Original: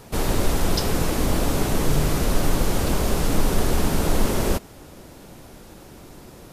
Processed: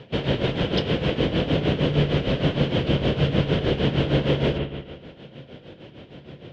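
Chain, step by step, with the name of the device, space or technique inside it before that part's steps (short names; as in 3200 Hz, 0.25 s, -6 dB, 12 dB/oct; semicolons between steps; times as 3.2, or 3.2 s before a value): combo amplifier with spring reverb and tremolo (spring tank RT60 1.5 s, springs 57 ms, chirp 75 ms, DRR 5 dB; tremolo 6.5 Hz, depth 71%; speaker cabinet 92–3600 Hz, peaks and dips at 140 Hz +8 dB, 510 Hz +5 dB, 850 Hz -7 dB, 1200 Hz -8 dB, 3100 Hz +10 dB); gain +2.5 dB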